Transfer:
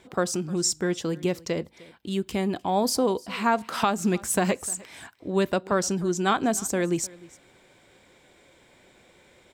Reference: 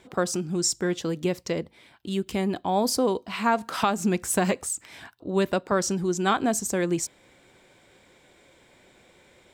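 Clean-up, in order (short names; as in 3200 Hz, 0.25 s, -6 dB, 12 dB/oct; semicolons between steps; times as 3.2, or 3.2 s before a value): inverse comb 0.304 s -22 dB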